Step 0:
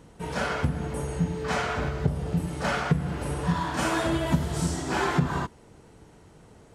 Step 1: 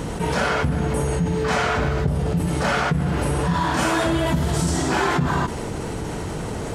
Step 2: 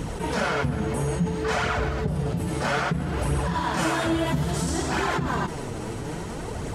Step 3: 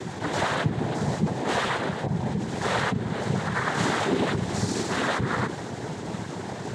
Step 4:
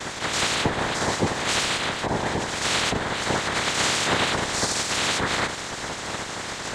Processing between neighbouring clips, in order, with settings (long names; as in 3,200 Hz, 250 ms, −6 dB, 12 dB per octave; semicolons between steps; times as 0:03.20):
envelope flattener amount 70%
flanger 0.6 Hz, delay 0.3 ms, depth 9.4 ms, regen +39%
cochlear-implant simulation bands 6
ceiling on every frequency bin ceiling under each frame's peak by 22 dB; level +2 dB